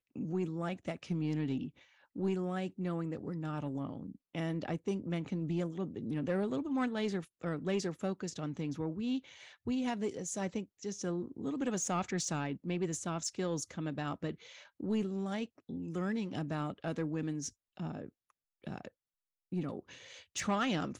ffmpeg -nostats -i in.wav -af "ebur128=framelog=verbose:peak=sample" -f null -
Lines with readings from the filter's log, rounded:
Integrated loudness:
  I:         -37.2 LUFS
  Threshold: -47.4 LUFS
Loudness range:
  LRA:         3.5 LU
  Threshold: -57.5 LUFS
  LRA low:   -39.6 LUFS
  LRA high:  -36.1 LUFS
Sample peak:
  Peak:      -24.5 dBFS